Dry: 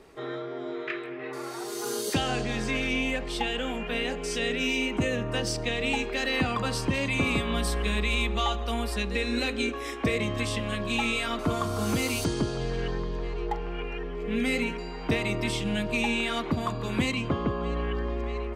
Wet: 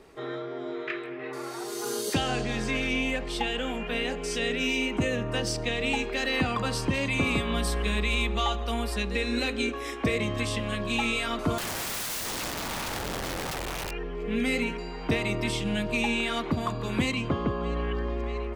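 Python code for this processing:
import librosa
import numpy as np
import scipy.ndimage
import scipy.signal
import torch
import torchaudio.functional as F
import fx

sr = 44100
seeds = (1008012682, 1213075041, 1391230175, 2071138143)

y = fx.overflow_wrap(x, sr, gain_db=28.0, at=(11.58, 13.91))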